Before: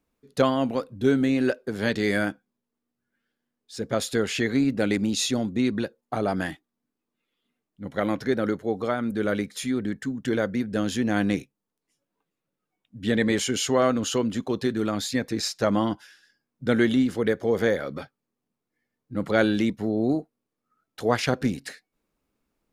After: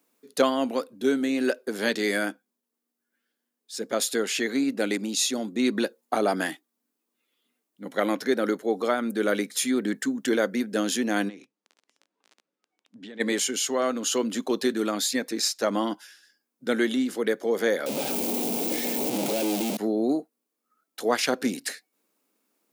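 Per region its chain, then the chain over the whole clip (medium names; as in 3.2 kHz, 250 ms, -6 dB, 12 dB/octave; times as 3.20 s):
11.28–13.19 s: crackle 15 per s -38 dBFS + compression 12:1, threshold -35 dBFS + distance through air 110 m
17.86–19.77 s: one-bit comparator + de-esser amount 60% + high-order bell 1.4 kHz -12.5 dB 1.1 oct
whole clip: high-pass 230 Hz 24 dB/octave; treble shelf 5.8 kHz +11 dB; gain riding 0.5 s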